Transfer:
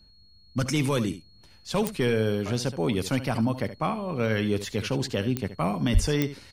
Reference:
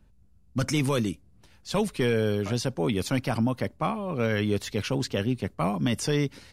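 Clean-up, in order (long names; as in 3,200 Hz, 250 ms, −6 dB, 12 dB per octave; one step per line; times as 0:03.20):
click removal
notch filter 4,300 Hz, Q 30
0:05.93–0:06.05: high-pass filter 140 Hz 24 dB per octave
echo removal 72 ms −12.5 dB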